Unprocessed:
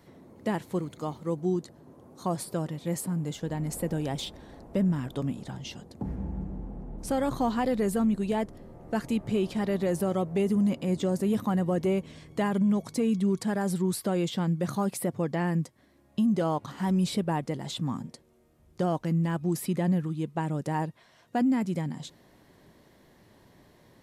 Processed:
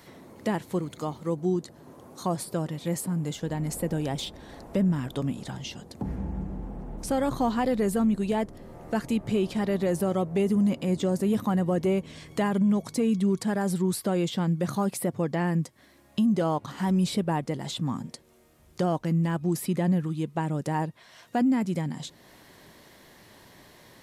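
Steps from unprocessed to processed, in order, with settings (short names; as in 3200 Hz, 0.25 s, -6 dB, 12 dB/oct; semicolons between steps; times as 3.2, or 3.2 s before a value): mismatched tape noise reduction encoder only; gain +1.5 dB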